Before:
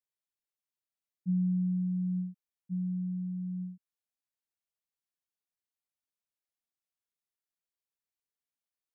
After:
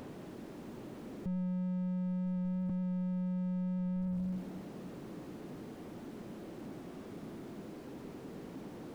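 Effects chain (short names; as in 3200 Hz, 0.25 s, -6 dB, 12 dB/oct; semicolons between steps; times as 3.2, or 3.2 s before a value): zero-crossing step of -49 dBFS; multi-head echo 97 ms, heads first and third, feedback 41%, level -7.5 dB; Schroeder reverb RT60 1.8 s, combs from 29 ms, DRR 17.5 dB; in parallel at -11 dB: companded quantiser 4-bit; on the sum: HPF 110 Hz 12 dB/oct; small resonant body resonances 210/300 Hz, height 15 dB, ringing for 20 ms; slew limiter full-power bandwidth 0.89 Hz; gain +12.5 dB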